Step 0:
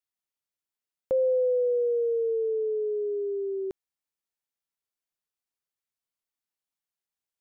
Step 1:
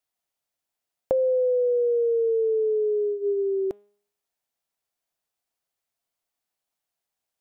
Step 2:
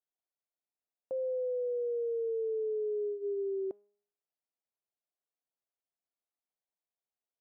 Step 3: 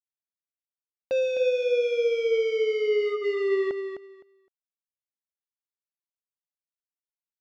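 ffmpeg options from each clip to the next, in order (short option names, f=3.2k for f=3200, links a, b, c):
-af "equalizer=f=690:w=2.5:g=8,bandreject=f=204.6:t=h:w=4,bandreject=f=409.2:t=h:w=4,bandreject=f=613.8:t=h:w=4,bandreject=f=818.4:t=h:w=4,bandreject=f=1.023k:t=h:w=4,bandreject=f=1.2276k:t=h:w=4,bandreject=f=1.4322k:t=h:w=4,bandreject=f=1.6368k:t=h:w=4,bandreject=f=1.8414k:t=h:w=4,bandreject=f=2.046k:t=h:w=4,bandreject=f=2.2506k:t=h:w=4,bandreject=f=2.4552k:t=h:w=4,bandreject=f=2.6598k:t=h:w=4,bandreject=f=2.8644k:t=h:w=4,bandreject=f=3.069k:t=h:w=4,bandreject=f=3.2736k:t=h:w=4,bandreject=f=3.4782k:t=h:w=4,bandreject=f=3.6828k:t=h:w=4,acompressor=threshold=-26dB:ratio=6,volume=5.5dB"
-af "alimiter=limit=-21dB:level=0:latency=1:release=19,bandpass=f=450:t=q:w=0.75:csg=0,volume=-9dB"
-af "aresample=16000,acrusher=bits=5:mix=0:aa=0.5,aresample=44100,aphaser=in_gain=1:out_gain=1:delay=2:decay=0.28:speed=1.7:type=sinusoidal,aecho=1:1:257|514|771:0.398|0.0717|0.0129,volume=6.5dB"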